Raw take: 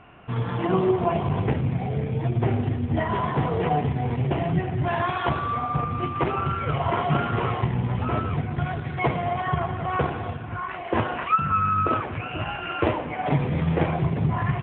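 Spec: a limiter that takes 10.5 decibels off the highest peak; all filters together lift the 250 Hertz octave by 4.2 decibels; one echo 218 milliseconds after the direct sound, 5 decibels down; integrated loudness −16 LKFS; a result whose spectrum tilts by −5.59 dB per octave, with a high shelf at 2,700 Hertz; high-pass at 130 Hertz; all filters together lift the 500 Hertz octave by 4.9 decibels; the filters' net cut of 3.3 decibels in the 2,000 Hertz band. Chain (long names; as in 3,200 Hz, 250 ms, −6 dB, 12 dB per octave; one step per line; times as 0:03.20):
high-pass filter 130 Hz
parametric band 250 Hz +5.5 dB
parametric band 500 Hz +5 dB
parametric band 2,000 Hz −7 dB
high-shelf EQ 2,700 Hz +5 dB
brickwall limiter −15 dBFS
single-tap delay 218 ms −5 dB
level +8 dB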